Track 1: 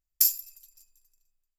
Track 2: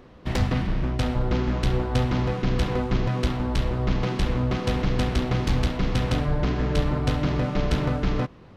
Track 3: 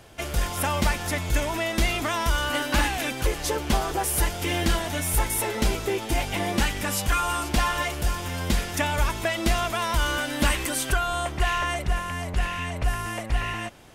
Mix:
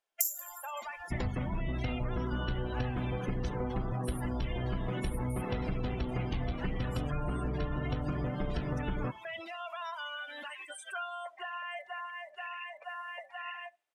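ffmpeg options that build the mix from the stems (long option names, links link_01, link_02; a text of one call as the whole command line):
ffmpeg -i stem1.wav -i stem2.wav -i stem3.wav -filter_complex "[0:a]highshelf=frequency=5400:width_type=q:width=3:gain=8,volume=-2dB,asplit=2[link_01][link_02];[link_02]volume=-20.5dB[link_03];[1:a]adelay=850,volume=-4dB[link_04];[2:a]highpass=640,alimiter=limit=-23dB:level=0:latency=1:release=51,volume=-6dB,asplit=2[link_05][link_06];[link_06]volume=-13dB[link_07];[link_03][link_07]amix=inputs=2:normalize=0,aecho=0:1:72|144|216|288|360|432|504|576:1|0.55|0.303|0.166|0.0915|0.0503|0.0277|0.0152[link_08];[link_01][link_04][link_05][link_08]amix=inputs=4:normalize=0,afftdn=noise_reduction=30:noise_floor=-36,acompressor=threshold=-30dB:ratio=6" out.wav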